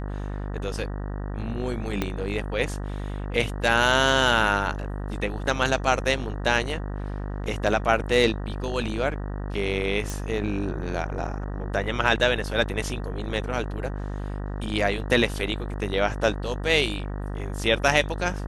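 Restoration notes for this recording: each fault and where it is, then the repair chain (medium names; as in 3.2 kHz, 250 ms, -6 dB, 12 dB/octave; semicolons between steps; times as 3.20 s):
buzz 50 Hz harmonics 38 -31 dBFS
2.02 s: pop -11 dBFS
10.10 s: pop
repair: de-click; de-hum 50 Hz, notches 38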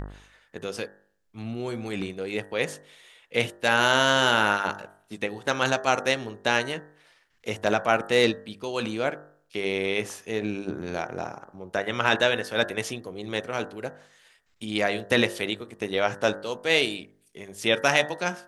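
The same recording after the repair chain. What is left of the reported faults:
2.02 s: pop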